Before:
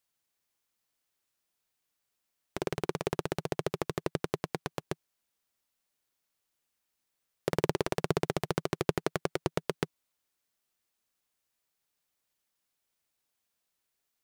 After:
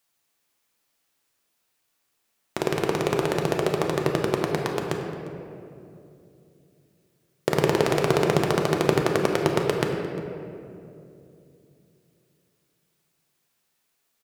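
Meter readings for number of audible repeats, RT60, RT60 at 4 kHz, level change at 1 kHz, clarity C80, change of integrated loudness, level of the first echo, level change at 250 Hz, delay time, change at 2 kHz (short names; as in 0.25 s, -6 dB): 1, 2.7 s, 1.4 s, +10.0 dB, 4.0 dB, +9.5 dB, -19.0 dB, +10.0 dB, 0.351 s, +10.0 dB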